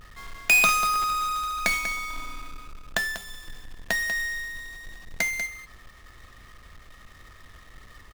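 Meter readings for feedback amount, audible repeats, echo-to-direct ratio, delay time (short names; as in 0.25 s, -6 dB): no steady repeat, 1, -10.0 dB, 0.192 s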